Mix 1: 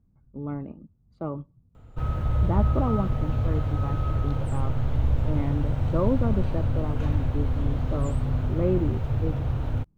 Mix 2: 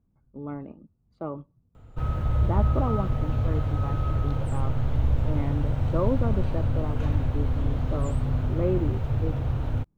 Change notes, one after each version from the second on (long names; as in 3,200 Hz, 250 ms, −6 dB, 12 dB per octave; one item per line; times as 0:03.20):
speech: add bass and treble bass −6 dB, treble −2 dB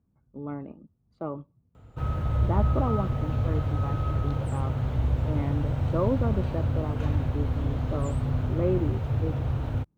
master: add high-pass filter 54 Hz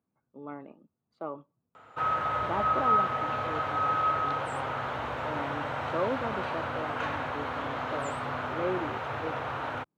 background: add parametric band 1,300 Hz +12.5 dB 2.4 octaves
master: add meter weighting curve A